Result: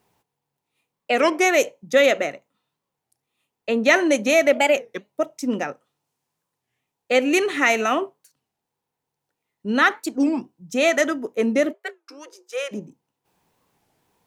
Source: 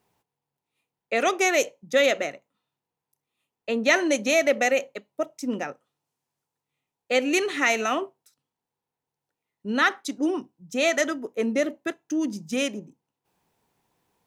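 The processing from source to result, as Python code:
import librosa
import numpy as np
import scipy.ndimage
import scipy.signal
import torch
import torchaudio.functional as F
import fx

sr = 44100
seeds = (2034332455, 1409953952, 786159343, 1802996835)

y = fx.cheby_ripple_highpass(x, sr, hz=350.0, ripple_db=9, at=(11.72, 12.71), fade=0.02)
y = fx.dynamic_eq(y, sr, hz=5000.0, q=0.95, threshold_db=-40.0, ratio=4.0, max_db=-5)
y = fx.record_warp(y, sr, rpm=33.33, depth_cents=250.0)
y = y * librosa.db_to_amplitude(4.5)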